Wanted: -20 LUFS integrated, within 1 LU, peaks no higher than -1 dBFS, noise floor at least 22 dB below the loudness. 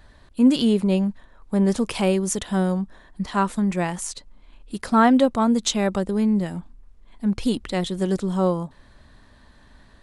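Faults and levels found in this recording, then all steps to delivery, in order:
loudness -22.0 LUFS; peak level -5.0 dBFS; loudness target -20.0 LUFS
-> trim +2 dB

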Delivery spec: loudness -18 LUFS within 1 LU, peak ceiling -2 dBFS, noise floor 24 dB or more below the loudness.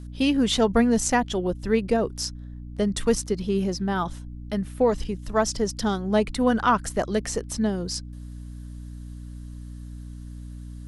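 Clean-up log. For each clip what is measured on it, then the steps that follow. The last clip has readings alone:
hum 60 Hz; highest harmonic 300 Hz; hum level -36 dBFS; loudness -24.5 LUFS; peak level -8.0 dBFS; loudness target -18.0 LUFS
-> de-hum 60 Hz, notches 5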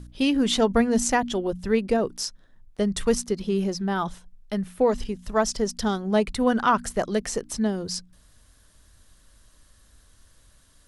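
hum not found; loudness -25.0 LUFS; peak level -8.0 dBFS; loudness target -18.0 LUFS
-> trim +7 dB; peak limiter -2 dBFS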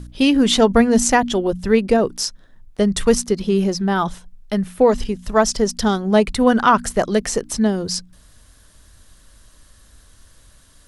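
loudness -18.0 LUFS; peak level -2.0 dBFS; noise floor -51 dBFS

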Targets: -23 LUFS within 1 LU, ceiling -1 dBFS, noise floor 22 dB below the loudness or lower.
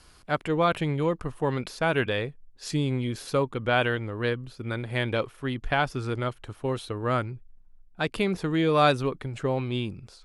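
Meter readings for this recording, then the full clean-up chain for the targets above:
loudness -27.5 LUFS; peak level -9.0 dBFS; loudness target -23.0 LUFS
-> trim +4.5 dB

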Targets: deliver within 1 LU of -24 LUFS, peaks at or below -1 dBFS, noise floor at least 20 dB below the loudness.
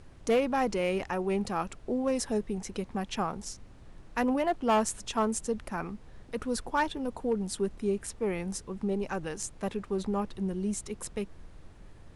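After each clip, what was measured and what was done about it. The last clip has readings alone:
clipped samples 0.4%; clipping level -19.5 dBFS; noise floor -51 dBFS; noise floor target -52 dBFS; loudness -32.0 LUFS; peak level -19.5 dBFS; loudness target -24.0 LUFS
-> clip repair -19.5 dBFS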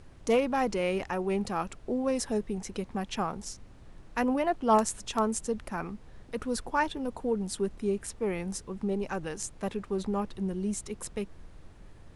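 clipped samples 0.0%; noise floor -51 dBFS; noise floor target -52 dBFS
-> noise print and reduce 6 dB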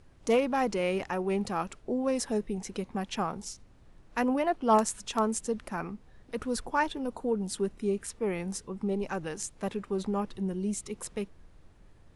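noise floor -57 dBFS; loudness -31.5 LUFS; peak level -12.5 dBFS; loudness target -24.0 LUFS
-> trim +7.5 dB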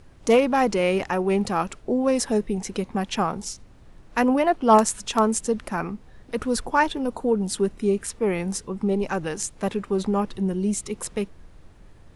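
loudness -24.0 LUFS; peak level -5.0 dBFS; noise floor -49 dBFS

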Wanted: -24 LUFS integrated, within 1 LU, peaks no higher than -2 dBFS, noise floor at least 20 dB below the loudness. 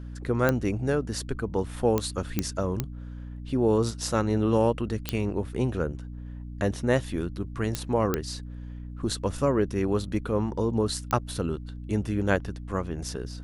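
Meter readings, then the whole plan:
clicks found 8; hum 60 Hz; highest harmonic 300 Hz; hum level -36 dBFS; loudness -28.0 LUFS; peak level -8.0 dBFS; loudness target -24.0 LUFS
-> de-click; de-hum 60 Hz, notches 5; trim +4 dB

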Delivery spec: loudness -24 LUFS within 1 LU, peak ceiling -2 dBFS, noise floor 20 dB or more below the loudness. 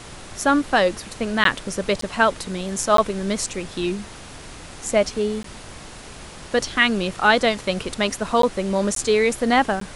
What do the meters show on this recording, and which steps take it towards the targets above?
dropouts 7; longest dropout 13 ms; noise floor -40 dBFS; noise floor target -41 dBFS; loudness -21.0 LUFS; peak level -1.5 dBFS; loudness target -24.0 LUFS
-> interpolate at 1.44/2.01/2.97/5.43/8.42/8.95/9.80 s, 13 ms; noise print and reduce 6 dB; trim -3 dB

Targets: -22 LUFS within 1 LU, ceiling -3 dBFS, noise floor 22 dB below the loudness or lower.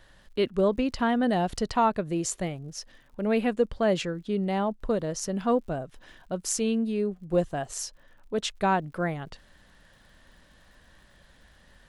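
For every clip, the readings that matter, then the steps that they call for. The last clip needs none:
tick rate 59 per s; loudness -28.0 LUFS; peak level -11.0 dBFS; loudness target -22.0 LUFS
-> de-click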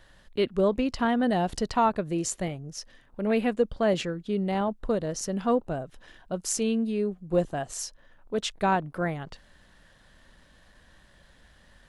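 tick rate 0.084 per s; loudness -28.0 LUFS; peak level -11.0 dBFS; loudness target -22.0 LUFS
-> trim +6 dB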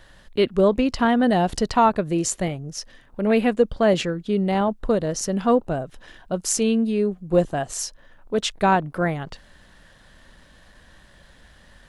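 loudness -22.0 LUFS; peak level -5.0 dBFS; noise floor -52 dBFS

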